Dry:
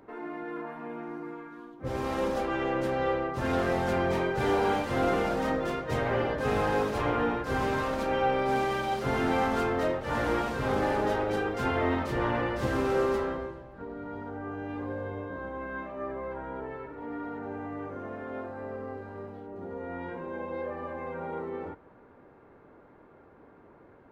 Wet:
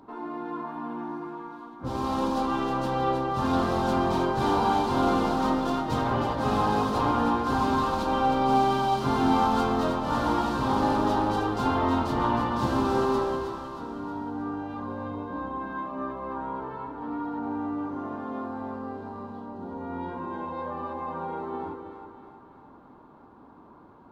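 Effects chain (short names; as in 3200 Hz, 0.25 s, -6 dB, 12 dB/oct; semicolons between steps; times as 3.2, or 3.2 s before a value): graphic EQ 250/500/1000/2000/4000 Hz +7/-7/+11/-12/+8 dB; split-band echo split 680 Hz, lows 0.19 s, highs 0.315 s, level -7 dB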